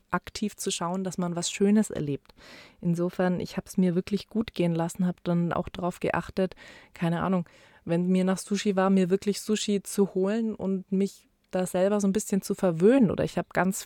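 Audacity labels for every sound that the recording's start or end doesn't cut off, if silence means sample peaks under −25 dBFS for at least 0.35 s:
2.850000	6.520000	sound
6.960000	7.410000	sound
7.900000	11.060000	sound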